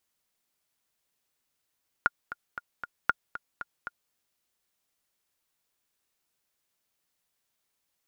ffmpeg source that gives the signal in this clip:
-f lavfi -i "aevalsrc='pow(10,(-8.5-14*gte(mod(t,4*60/232),60/232))/20)*sin(2*PI*1420*mod(t,60/232))*exp(-6.91*mod(t,60/232)/0.03)':d=2.06:s=44100"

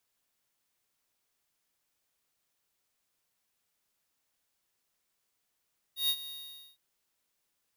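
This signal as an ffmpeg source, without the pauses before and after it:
-f lavfi -i "aevalsrc='0.0447*(2*lt(mod(3750*t,1),0.5)-1)':d=0.811:s=44100,afade=t=in:d=0.131,afade=t=out:st=0.131:d=0.063:silence=0.168,afade=t=out:st=0.33:d=0.481"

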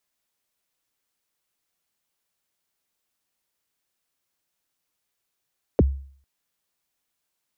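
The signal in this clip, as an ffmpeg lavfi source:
-f lavfi -i "aevalsrc='0.299*pow(10,-3*t/0.51)*sin(2*PI*(600*0.03/log(68/600)*(exp(log(68/600)*min(t,0.03)/0.03)-1)+68*max(t-0.03,0)))':d=0.45:s=44100"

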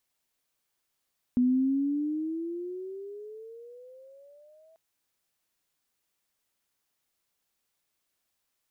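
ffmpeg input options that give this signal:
-f lavfi -i "aevalsrc='pow(10,(-19.5-36*t/3.39)/20)*sin(2*PI*245*3.39/(17*log(2)/12)*(exp(17*log(2)/12*t/3.39)-1))':d=3.39:s=44100"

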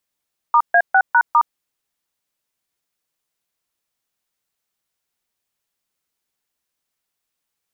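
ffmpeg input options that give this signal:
-f lavfi -i "aevalsrc='0.251*clip(min(mod(t,0.202),0.065-mod(t,0.202))/0.002,0,1)*(eq(floor(t/0.202),0)*(sin(2*PI*941*mod(t,0.202))+sin(2*PI*1209*mod(t,0.202)))+eq(floor(t/0.202),1)*(sin(2*PI*697*mod(t,0.202))+sin(2*PI*1633*mod(t,0.202)))+eq(floor(t/0.202),2)*(sin(2*PI*770*mod(t,0.202))+sin(2*PI*1477*mod(t,0.202)))+eq(floor(t/0.202),3)*(sin(2*PI*941*mod(t,0.202))+sin(2*PI*1477*mod(t,0.202)))+eq(floor(t/0.202),4)*(sin(2*PI*941*mod(t,0.202))+sin(2*PI*1209*mod(t,0.202))))':d=1.01:s=44100"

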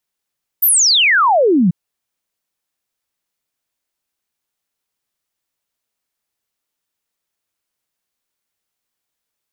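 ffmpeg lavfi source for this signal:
-f lavfi -i "aevalsrc='0.355*clip(min(t,1.09-t)/0.01,0,1)*sin(2*PI*15000*1.09/log(160/15000)*(exp(log(160/15000)*t/1.09)-1))':d=1.09:s=44100"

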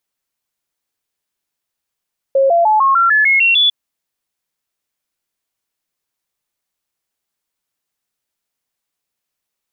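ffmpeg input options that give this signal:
-f lavfi -i "aevalsrc='0.376*clip(min(mod(t,0.15),0.15-mod(t,0.15))/0.005,0,1)*sin(2*PI*542*pow(2,floor(t/0.15)/3)*mod(t,0.15))':d=1.35:s=44100"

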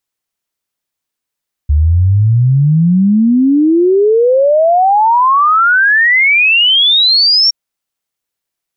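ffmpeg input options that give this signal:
-f lavfi -i "aevalsrc='0.501*clip(min(t,5.82-t)/0.01,0,1)*sin(2*PI*71*5.82/log(5600/71)*(exp(log(5600/71)*t/5.82)-1))':d=5.82:s=44100"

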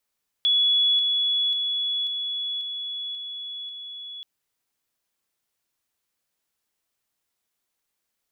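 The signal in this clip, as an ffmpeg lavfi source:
-f lavfi -i "aevalsrc='pow(10,(-17-3*floor(t/0.54))/20)*sin(2*PI*3390*t)':d=3.78:s=44100"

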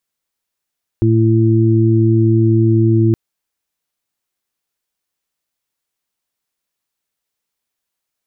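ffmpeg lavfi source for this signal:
-f lavfi -i "aevalsrc='0.282*sin(2*PI*112*t)+0.119*sin(2*PI*224*t)+0.211*sin(2*PI*336*t)':d=2.12:s=44100"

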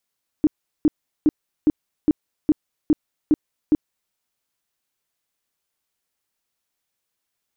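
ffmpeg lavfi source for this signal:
-f lavfi -i "aevalsrc='0.282*sin(2*PI*304*mod(t,0.41))*lt(mod(t,0.41),9/304)':d=3.69:s=44100"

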